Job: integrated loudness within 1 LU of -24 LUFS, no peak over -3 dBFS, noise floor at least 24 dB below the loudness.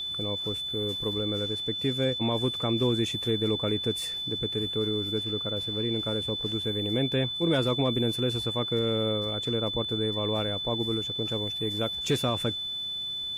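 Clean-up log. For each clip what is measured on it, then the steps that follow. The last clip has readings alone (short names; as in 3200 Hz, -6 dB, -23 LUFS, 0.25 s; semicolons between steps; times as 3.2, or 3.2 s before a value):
steady tone 3500 Hz; tone level -31 dBFS; loudness -28.0 LUFS; peak -16.0 dBFS; loudness target -24.0 LUFS
-> notch 3500 Hz, Q 30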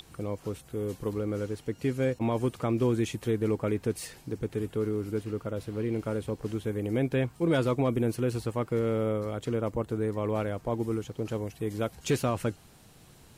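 steady tone none; loudness -31.0 LUFS; peak -17.0 dBFS; loudness target -24.0 LUFS
-> gain +7 dB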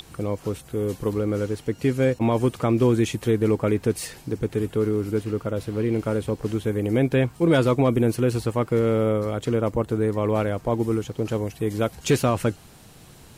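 loudness -24.0 LUFS; peak -10.0 dBFS; noise floor -48 dBFS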